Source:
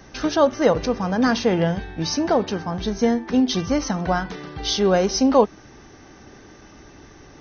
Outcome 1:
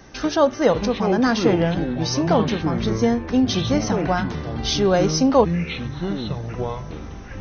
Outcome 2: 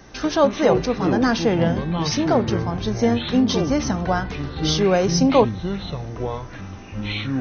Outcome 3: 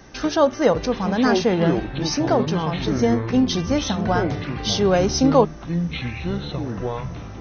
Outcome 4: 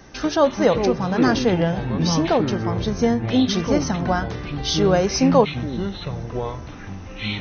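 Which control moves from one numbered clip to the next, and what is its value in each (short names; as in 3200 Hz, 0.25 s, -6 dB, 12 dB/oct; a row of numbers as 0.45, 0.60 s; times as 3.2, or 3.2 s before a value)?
echoes that change speed, time: 462, 85, 700, 224 ms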